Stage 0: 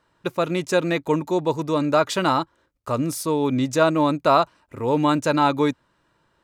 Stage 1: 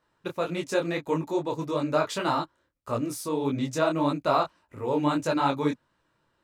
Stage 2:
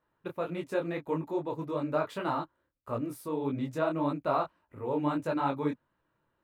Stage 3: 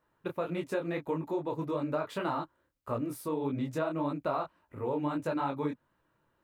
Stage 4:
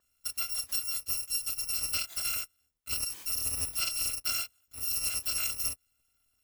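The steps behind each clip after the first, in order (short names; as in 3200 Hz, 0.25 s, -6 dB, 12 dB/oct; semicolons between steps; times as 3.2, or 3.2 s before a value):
detuned doubles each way 58 cents; gain -2.5 dB
bell 6100 Hz -15 dB 1.5 oct; gain -4.5 dB
compressor 4:1, threshold -32 dBFS, peak gain reduction 7.5 dB; gain +3 dB
FFT order left unsorted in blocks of 256 samples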